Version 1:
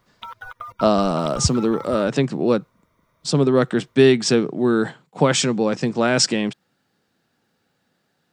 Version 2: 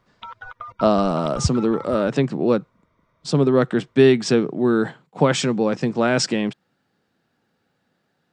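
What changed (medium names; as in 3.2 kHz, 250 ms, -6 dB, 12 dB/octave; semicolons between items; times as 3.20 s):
speech: add treble shelf 4.4 kHz -8.5 dB; background: add distance through air 130 m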